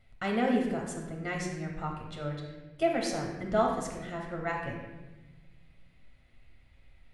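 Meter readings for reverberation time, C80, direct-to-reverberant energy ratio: 1.2 s, 5.5 dB, 0.0 dB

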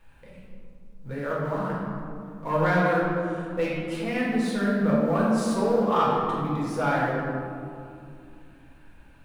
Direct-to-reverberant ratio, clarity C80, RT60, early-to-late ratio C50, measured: -6.0 dB, 1.0 dB, 2.6 s, -1.5 dB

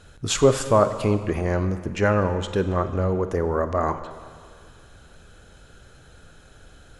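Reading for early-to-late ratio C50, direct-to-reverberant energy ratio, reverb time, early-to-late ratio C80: 11.0 dB, 10.0 dB, 2.0 s, 12.0 dB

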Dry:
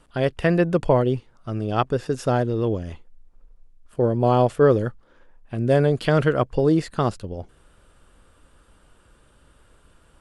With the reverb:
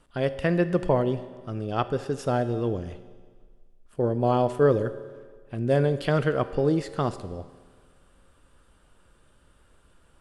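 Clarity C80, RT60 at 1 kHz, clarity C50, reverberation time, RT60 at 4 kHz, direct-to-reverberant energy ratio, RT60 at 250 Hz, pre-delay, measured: 14.5 dB, 1.6 s, 13.0 dB, 1.6 s, 1.6 s, 11.5 dB, 1.6 s, 5 ms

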